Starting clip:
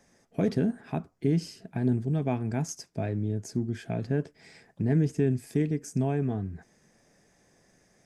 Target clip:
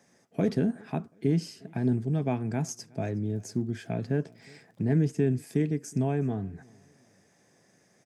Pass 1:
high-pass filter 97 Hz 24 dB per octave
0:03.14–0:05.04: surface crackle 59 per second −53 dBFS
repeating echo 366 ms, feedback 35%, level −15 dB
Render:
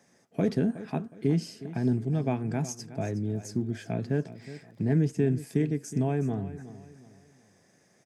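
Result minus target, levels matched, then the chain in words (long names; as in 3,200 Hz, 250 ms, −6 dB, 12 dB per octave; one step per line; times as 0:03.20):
echo-to-direct +11.5 dB
high-pass filter 97 Hz 24 dB per octave
0:03.14–0:05.04: surface crackle 59 per second −53 dBFS
repeating echo 366 ms, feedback 35%, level −26.5 dB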